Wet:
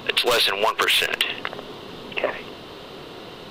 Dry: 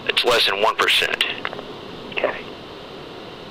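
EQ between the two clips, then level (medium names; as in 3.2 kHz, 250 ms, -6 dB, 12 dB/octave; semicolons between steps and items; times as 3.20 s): treble shelf 8.8 kHz +10 dB; -3.0 dB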